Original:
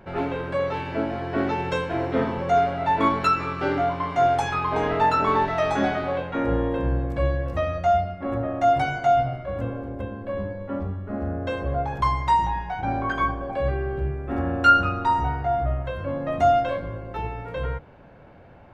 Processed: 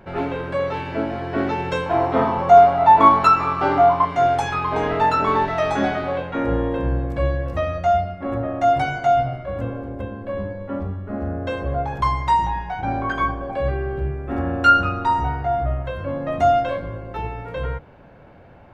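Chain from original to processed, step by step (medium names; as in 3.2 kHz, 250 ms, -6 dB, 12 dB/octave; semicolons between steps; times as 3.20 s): 1.86–4.05 s: high-order bell 910 Hz +9 dB 1.1 oct; trim +2 dB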